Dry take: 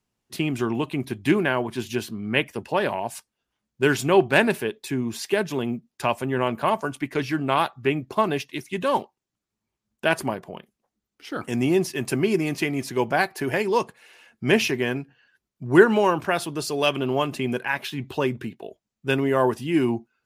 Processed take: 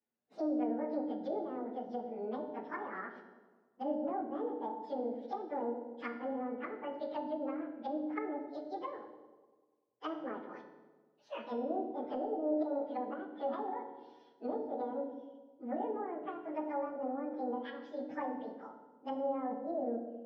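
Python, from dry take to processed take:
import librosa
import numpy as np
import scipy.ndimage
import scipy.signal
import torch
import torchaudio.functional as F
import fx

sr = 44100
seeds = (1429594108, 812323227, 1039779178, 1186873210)

p1 = fx.pitch_bins(x, sr, semitones=12.0)
p2 = scipy.signal.sosfilt(scipy.signal.butter(2, 130.0, 'highpass', fs=sr, output='sos'), p1)
p3 = fx.env_lowpass_down(p2, sr, base_hz=500.0, full_db=-23.0)
p4 = fx.high_shelf(p3, sr, hz=7300.0, db=-9.0)
p5 = fx.over_compress(p4, sr, threshold_db=-27.0, ratio=-1.0)
p6 = fx.air_absorb(p5, sr, metres=260.0)
p7 = p6 + fx.echo_wet_lowpass(p6, sr, ms=98, feedback_pct=64, hz=510.0, wet_db=-6.0, dry=0)
p8 = fx.rev_fdn(p7, sr, rt60_s=1.0, lf_ratio=1.5, hf_ratio=0.95, size_ms=10.0, drr_db=4.5)
y = p8 * 10.0 ** (-8.0 / 20.0)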